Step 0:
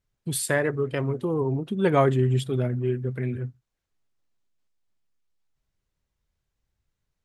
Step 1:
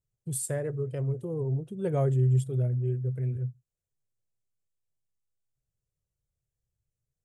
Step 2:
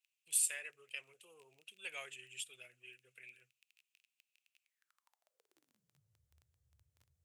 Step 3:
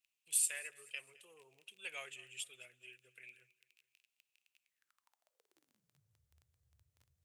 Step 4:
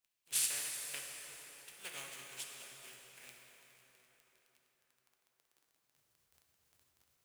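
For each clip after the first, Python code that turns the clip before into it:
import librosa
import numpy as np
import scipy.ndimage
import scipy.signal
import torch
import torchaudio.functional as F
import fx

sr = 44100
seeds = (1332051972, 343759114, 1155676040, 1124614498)

y1 = fx.graphic_eq(x, sr, hz=(125, 250, 500, 1000, 2000, 4000, 8000), db=(11, -8, 6, -9, -7, -10, 8))
y1 = y1 * librosa.db_to_amplitude(-9.0)
y2 = fx.dmg_crackle(y1, sr, seeds[0], per_s=13.0, level_db=-53.0)
y2 = fx.filter_sweep_highpass(y2, sr, from_hz=2600.0, to_hz=76.0, start_s=4.61, end_s=6.25, q=8.0)
y2 = y2 * librosa.db_to_amplitude(1.0)
y3 = fx.echo_feedback(y2, sr, ms=214, feedback_pct=44, wet_db=-21.5)
y4 = fx.spec_flatten(y3, sr, power=0.33)
y4 = fx.rev_plate(y4, sr, seeds[1], rt60_s=4.9, hf_ratio=0.65, predelay_ms=0, drr_db=0.0)
y4 = y4 * librosa.db_to_amplitude(-1.5)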